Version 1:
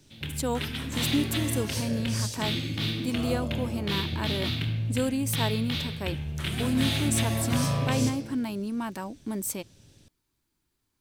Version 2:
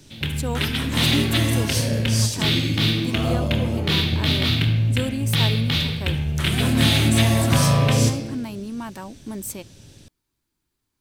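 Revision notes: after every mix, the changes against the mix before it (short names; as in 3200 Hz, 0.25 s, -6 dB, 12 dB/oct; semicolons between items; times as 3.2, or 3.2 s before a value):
background +9.5 dB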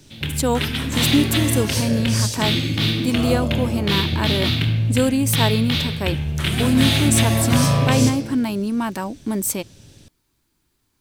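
speech +9.0 dB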